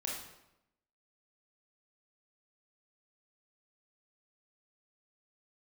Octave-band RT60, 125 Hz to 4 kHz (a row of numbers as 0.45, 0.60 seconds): 0.95, 0.95, 0.90, 0.85, 0.75, 0.70 seconds